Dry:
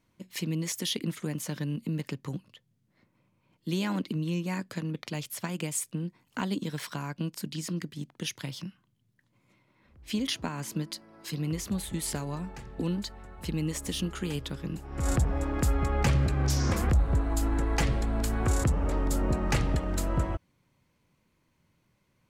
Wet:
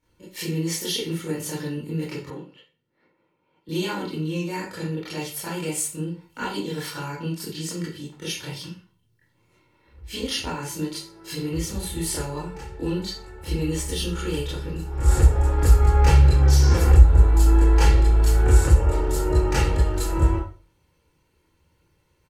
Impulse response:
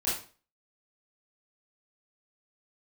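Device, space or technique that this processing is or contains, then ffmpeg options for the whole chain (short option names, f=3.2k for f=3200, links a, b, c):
microphone above a desk: -filter_complex "[0:a]aecho=1:1:2.2:0.59[a];[1:a]atrim=start_sample=2205[b];[a][b]afir=irnorm=-1:irlink=0,asettb=1/sr,asplit=3[c][d][e];[c]atrim=end=2.304[f];[d]atrim=start=2.3:end=3.69,asetpts=PTS-STARTPTS,afade=t=in:d=0.004:c=qsin,afade=t=out:st=1.386:d=0.004:c=qsin,acrossover=split=170 3400:gain=0.0708 1 0.178[g][h][i];[g][h][i]amix=inputs=3:normalize=0[j];[e]atrim=start=3.686[k];[f][j]acrossfade=d=0.004:c1=hsin:c2=qsin[l];[l][k]acrossfade=d=0.004:c1=qsin:c2=hsin,volume=-3dB"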